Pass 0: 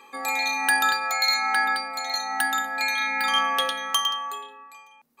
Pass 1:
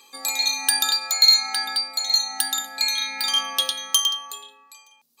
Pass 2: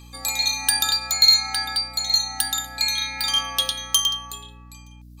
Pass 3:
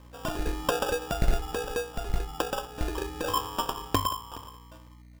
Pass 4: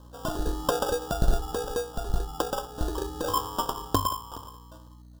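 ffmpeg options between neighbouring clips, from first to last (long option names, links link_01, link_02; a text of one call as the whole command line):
ffmpeg -i in.wav -af "highshelf=frequency=2800:width_type=q:width=1.5:gain=14,volume=-6.5dB" out.wav
ffmpeg -i in.wav -af "aeval=exprs='val(0)+0.00708*(sin(2*PI*60*n/s)+sin(2*PI*2*60*n/s)/2+sin(2*PI*3*60*n/s)/3+sin(2*PI*4*60*n/s)/4+sin(2*PI*5*60*n/s)/5)':channel_layout=same" out.wav
ffmpeg -i in.wav -af "acrusher=samples=21:mix=1:aa=0.000001,aecho=1:1:420:0.1,volume=-6.5dB" out.wav
ffmpeg -i in.wav -af "asuperstop=centerf=2200:order=4:qfactor=1.3,volume=1.5dB" out.wav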